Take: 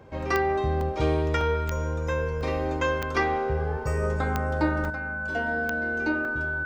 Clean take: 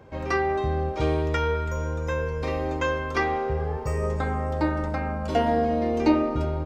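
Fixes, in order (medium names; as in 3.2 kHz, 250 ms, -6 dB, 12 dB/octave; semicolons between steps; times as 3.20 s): de-click; band-stop 1.5 kHz, Q 30; interpolate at 0.81/1.41/2.41/3.02/4.85/6.25 s, 2 ms; gain correction +8.5 dB, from 4.90 s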